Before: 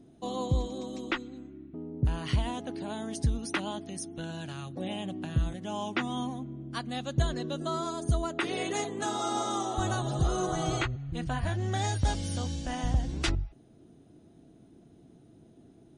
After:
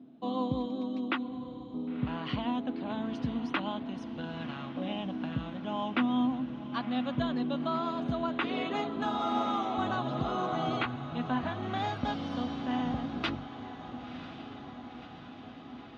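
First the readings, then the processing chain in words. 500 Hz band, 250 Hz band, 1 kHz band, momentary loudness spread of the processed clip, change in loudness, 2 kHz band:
−1.5 dB, +3.5 dB, +1.5 dB, 13 LU, −1.0 dB, −1.0 dB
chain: loudspeaker in its box 190–3,600 Hz, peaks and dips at 250 Hz +10 dB, 360 Hz −8 dB, 1,100 Hz +4 dB, 1,900 Hz −4 dB
on a send: feedback delay with all-pass diffusion 1,026 ms, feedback 68%, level −12 dB

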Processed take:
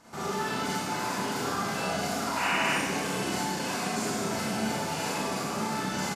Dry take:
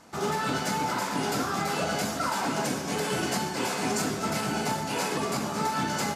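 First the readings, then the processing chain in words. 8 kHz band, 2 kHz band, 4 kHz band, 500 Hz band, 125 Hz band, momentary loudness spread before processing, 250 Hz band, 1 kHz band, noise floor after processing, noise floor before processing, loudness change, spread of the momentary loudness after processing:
−1.5 dB, +1.0 dB, −0.5 dB, −2.0 dB, −2.5 dB, 1 LU, −1.5 dB, −2.0 dB, −33 dBFS, −33 dBFS, −1.0 dB, 4 LU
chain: brickwall limiter −25.5 dBFS, peak gain reduction 7.5 dB
sound drawn into the spectrogram noise, 0:02.36–0:02.73, 770–3,000 Hz −32 dBFS
four-comb reverb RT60 1.2 s, combs from 32 ms, DRR −7 dB
downsampling to 32,000 Hz
level −4 dB

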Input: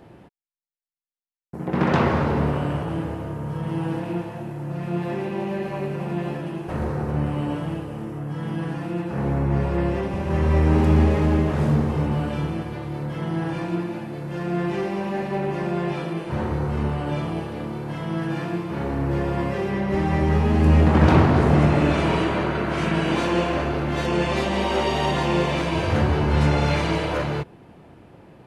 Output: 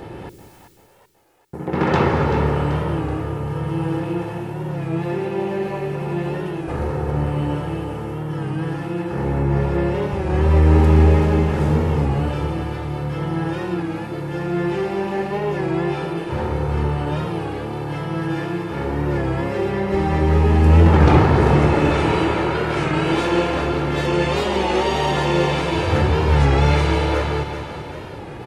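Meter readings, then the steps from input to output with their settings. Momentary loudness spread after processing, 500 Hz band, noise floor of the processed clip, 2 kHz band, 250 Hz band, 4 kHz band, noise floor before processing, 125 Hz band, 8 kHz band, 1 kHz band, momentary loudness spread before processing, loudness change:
12 LU, +4.0 dB, −35 dBFS, +3.0 dB, +1.5 dB, +3.0 dB, −49 dBFS, +3.5 dB, can't be measured, +3.5 dB, 12 LU, +3.0 dB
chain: comb filter 2.3 ms, depth 37%
reversed playback
upward compression, threshold −25 dBFS
reversed playback
echo with a time of its own for lows and highs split 490 Hz, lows 192 ms, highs 385 ms, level −9 dB
wow of a warped record 33 1/3 rpm, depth 100 cents
level +2 dB

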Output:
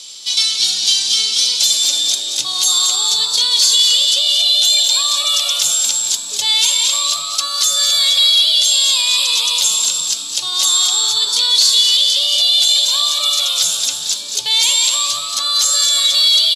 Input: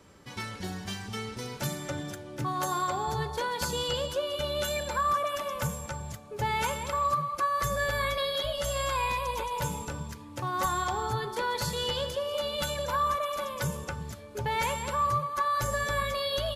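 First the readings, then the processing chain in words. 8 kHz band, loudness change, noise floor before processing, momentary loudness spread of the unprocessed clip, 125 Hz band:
+26.5 dB, +19.0 dB, −45 dBFS, 9 LU, below −15 dB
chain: in parallel at +1 dB: downward compressor, threshold −37 dBFS, peak gain reduction 13 dB
on the sum: high shelf with overshoot 2,500 Hz +13.5 dB, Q 3
soft clipping −10.5 dBFS, distortion −15 dB
echo with shifted repeats 225 ms, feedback 42%, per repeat +120 Hz, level −7 dB
brickwall limiter −13 dBFS, peak gain reduction 5.5 dB
meter weighting curve ITU-R 468
on a send: single-tap delay 196 ms −14.5 dB
on the sum: level −2 dB

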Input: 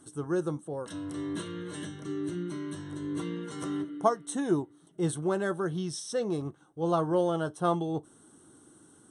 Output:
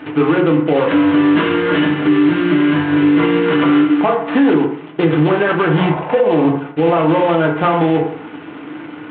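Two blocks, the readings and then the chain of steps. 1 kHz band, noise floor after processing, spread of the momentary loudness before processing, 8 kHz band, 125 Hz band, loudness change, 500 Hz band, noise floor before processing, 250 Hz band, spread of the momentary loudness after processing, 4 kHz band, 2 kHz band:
+16.5 dB, −33 dBFS, 10 LU, below −40 dB, +16.0 dB, +18.0 dB, +16.0 dB, −59 dBFS, +20.0 dB, 7 LU, +18.5 dB, +23.5 dB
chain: variable-slope delta modulation 16 kbit/s
high-pass filter 120 Hz 12 dB per octave
low-shelf EQ 350 Hz −6.5 dB
gain on a spectral selection 0:05.68–0:06.51, 480–1,100 Hz +9 dB
downward compressor 10 to 1, threshold −34 dBFS, peak gain reduction 14.5 dB
feedback delay network reverb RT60 0.59 s, low-frequency decay 0.9×, high-frequency decay 0.4×, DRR 1 dB
boost into a limiter +29.5 dB
level −4 dB

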